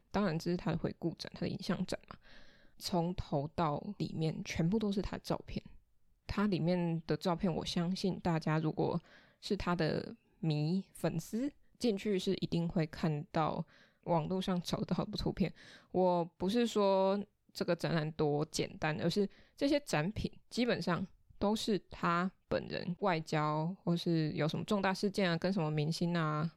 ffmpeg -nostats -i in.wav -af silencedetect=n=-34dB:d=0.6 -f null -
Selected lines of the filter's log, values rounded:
silence_start: 2.11
silence_end: 2.85 | silence_duration: 0.74
silence_start: 5.59
silence_end: 6.29 | silence_duration: 0.71